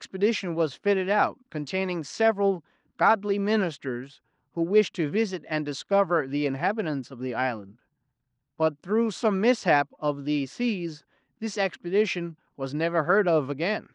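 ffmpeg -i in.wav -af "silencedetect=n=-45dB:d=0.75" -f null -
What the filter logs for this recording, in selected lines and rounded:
silence_start: 7.72
silence_end: 8.59 | silence_duration: 0.88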